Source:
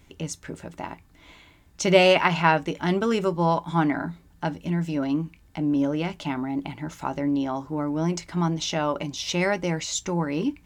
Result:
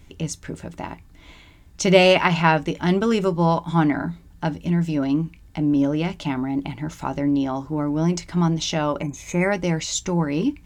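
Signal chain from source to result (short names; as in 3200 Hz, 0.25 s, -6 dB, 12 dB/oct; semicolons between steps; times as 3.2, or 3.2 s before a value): high shelf 2400 Hz +9.5 dB; spectral gain 9.01–9.51, 2600–6200 Hz -20 dB; tilt -2 dB/oct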